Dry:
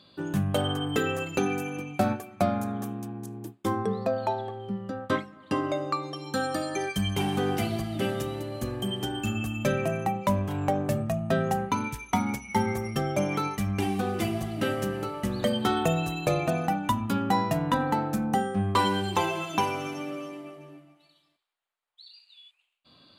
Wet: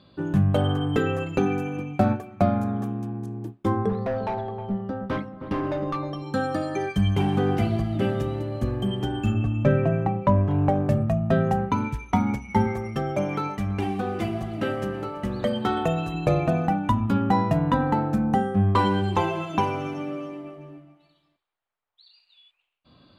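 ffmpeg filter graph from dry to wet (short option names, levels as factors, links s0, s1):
-filter_complex "[0:a]asettb=1/sr,asplit=3[s0][s1][s2];[s0]atrim=end=3.894[s3];[s1]atrim=start=3.89:end=6.22,asetpts=PTS-STARTPTS,afade=t=in:d=0.004:c=qsin,afade=t=out:st=2.326:d=0.004:c=qsin,asoftclip=type=hard:threshold=0.0473,equalizer=f=7500:w=6.1:g=-9,asplit=2[s4][s5];[s5]adelay=313,lowpass=f=1000:p=1,volume=0.355,asplit=2[s6][s7];[s7]adelay=313,lowpass=f=1000:p=1,volume=0.36,asplit=2[s8][s9];[s9]adelay=313,lowpass=f=1000:p=1,volume=0.36,asplit=2[s10][s11];[s11]adelay=313,lowpass=f=1000:p=1,volume=0.36[s12];[s4][s6][s8][s10][s12]amix=inputs=5:normalize=0,atrim=end_sample=102753[s13];[s2]atrim=start=6.216[s14];[s3][s13]acrossfade=d=0.004:c1=hsin:c2=qsin[s15];[s15][s14]acrossfade=d=0.004:c1=qsin:c2=hsin,asettb=1/sr,asplit=3[s16][s17][s18];[s16]atrim=end=9.344[s19];[s17]atrim=start=9.34:end=10.69,asetpts=PTS-STARTPTS,afade=t=in:d=0.004:c=qsin,afade=t=out:st=1.346:d=0.004:c=qsin,aemphasis=mode=reproduction:type=75fm,aecho=1:1:7.1:0.37,atrim=end_sample=59535[s20];[s18]atrim=start=10.686[s21];[s19][s20]acrossfade=d=0.004:c1=hsin:c2=qsin[s22];[s22][s21]acrossfade=d=0.004:c1=qsin:c2=hsin,asettb=1/sr,asplit=3[s23][s24][s25];[s23]atrim=end=12.674[s26];[s24]atrim=start=12.67:end=16.14,asetpts=PTS-STARTPTS,afade=t=in:d=0.004:c=qsin,afade=t=out:st=3.466:d=0.004:c=qsin,lowshelf=f=270:g=-7.5,aecho=1:1:330:0.1,atrim=end_sample=153027[s27];[s25]atrim=start=16.136[s28];[s26][s27]acrossfade=d=0.004:c1=hsin:c2=qsin[s29];[s29][s28]acrossfade=d=0.004:c1=qsin:c2=hsin,lowpass=f=1700:p=1,lowshelf=f=110:g=10,volume=1.41"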